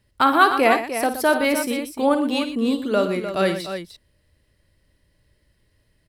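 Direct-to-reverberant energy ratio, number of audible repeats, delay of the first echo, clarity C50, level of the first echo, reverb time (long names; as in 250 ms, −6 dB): no reverb audible, 3, 53 ms, no reverb audible, −10.5 dB, no reverb audible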